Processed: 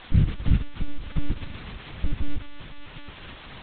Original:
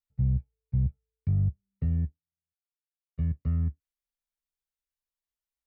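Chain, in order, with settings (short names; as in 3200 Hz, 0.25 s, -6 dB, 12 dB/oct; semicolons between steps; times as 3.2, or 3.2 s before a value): G.711 law mismatch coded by A; HPF 76 Hz 6 dB/oct; notches 50/100/150/200/250/300 Hz; treble ducked by the level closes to 450 Hz, closed at -31 dBFS; EQ curve 180 Hz 0 dB, 420 Hz -7 dB, 900 Hz +7 dB, 1700 Hz -1 dB, 2500 Hz -29 dB; in parallel at -7.5 dB: requantised 6-bit, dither triangular; on the sum: time stretch by phase-locked vocoder 0.64×; air absorption 71 m; analogue delay 0.246 s, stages 2048, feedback 74%, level -19.5 dB; on a send at -17 dB: reverb RT60 1.2 s, pre-delay 3 ms; on the sum: monotone LPC vocoder at 8 kHz 290 Hz; gain +8.5 dB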